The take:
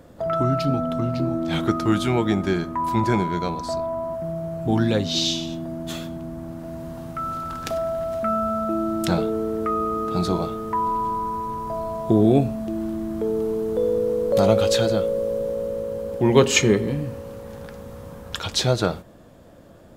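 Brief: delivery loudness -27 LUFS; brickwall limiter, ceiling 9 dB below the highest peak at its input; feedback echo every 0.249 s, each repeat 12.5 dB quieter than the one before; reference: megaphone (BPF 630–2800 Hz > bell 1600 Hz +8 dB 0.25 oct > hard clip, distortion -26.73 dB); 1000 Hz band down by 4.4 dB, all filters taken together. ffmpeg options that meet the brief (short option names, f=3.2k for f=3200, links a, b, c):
-af "equalizer=f=1k:t=o:g=-5.5,alimiter=limit=-12dB:level=0:latency=1,highpass=630,lowpass=2.8k,equalizer=f=1.6k:t=o:w=0.25:g=8,aecho=1:1:249|498|747:0.237|0.0569|0.0137,asoftclip=type=hard:threshold=-21dB,volume=4dB"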